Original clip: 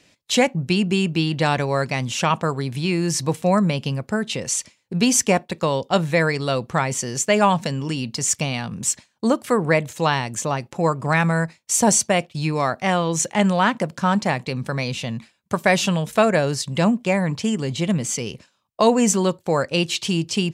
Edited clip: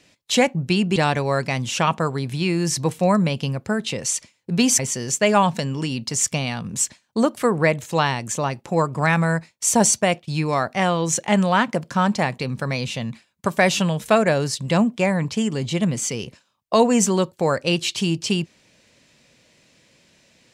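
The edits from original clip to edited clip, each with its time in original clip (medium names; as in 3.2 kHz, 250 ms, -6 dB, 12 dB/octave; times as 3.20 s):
0.96–1.39 s: delete
5.22–6.86 s: delete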